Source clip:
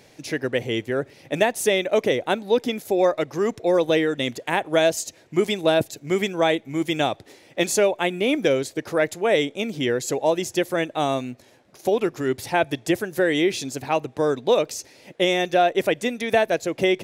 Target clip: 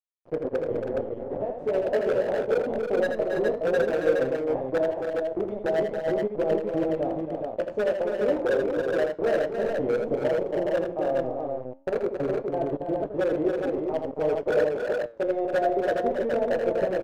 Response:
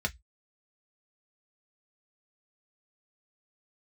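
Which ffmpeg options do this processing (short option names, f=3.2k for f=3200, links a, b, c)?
-filter_complex "[0:a]alimiter=limit=-11dB:level=0:latency=1:release=168,acompressor=threshold=-26dB:ratio=2,asettb=1/sr,asplit=3[a][b][c];[a]atrim=end=0.914[d];[b]atrim=start=0.91:end=1.43,asetpts=PTS-STARTPTS,afade=t=in:d=0.004:c=qsin,afade=t=out:st=0.516:d=0.004:c=qsin,tremolo=f=300:d=0.75[e];[c]atrim=start=1.426[f];[d][e]acrossfade=d=0.004:c1=hsin:c2=qsin[g];[g][f]acrossfade=d=0.004:c1=qsin:c2=hsin,flanger=delay=18.5:depth=5:speed=0.14,acrusher=bits=4:mix=0:aa=0.000001,lowpass=f=560:t=q:w=3.5,aeval=exprs='0.158*(abs(mod(val(0)/0.158+3,4)-2)-1)':c=same,flanger=delay=6.4:depth=5.5:regen=86:speed=0.49:shape=triangular,aecho=1:1:81|276|321|417:0.473|0.447|0.376|0.668,volume=1.5dB"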